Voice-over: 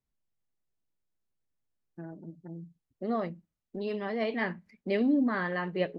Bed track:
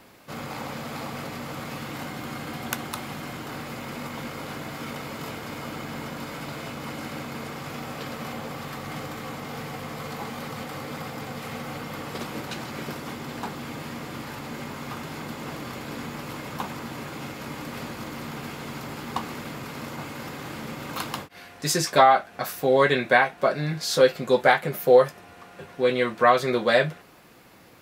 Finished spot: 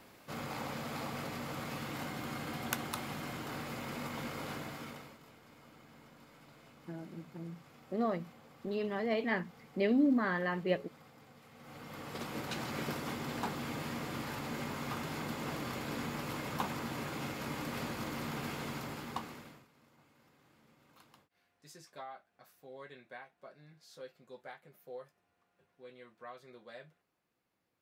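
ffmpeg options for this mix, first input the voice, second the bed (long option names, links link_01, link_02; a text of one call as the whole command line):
ffmpeg -i stem1.wav -i stem2.wav -filter_complex "[0:a]adelay=4900,volume=-2dB[link_01];[1:a]volume=13.5dB,afade=type=out:start_time=4.51:duration=0.68:silence=0.133352,afade=type=in:start_time=11.55:duration=1.16:silence=0.105925,afade=type=out:start_time=18.6:duration=1.07:silence=0.0446684[link_02];[link_01][link_02]amix=inputs=2:normalize=0" out.wav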